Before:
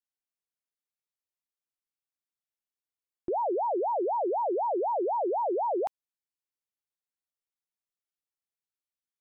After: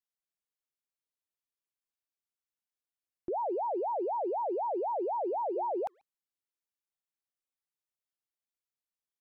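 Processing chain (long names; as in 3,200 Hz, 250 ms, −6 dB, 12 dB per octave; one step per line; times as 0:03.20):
0:05.31–0:05.76: mains-hum notches 60/120/180/240/300/360 Hz
far-end echo of a speakerphone 140 ms, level −29 dB
level −4 dB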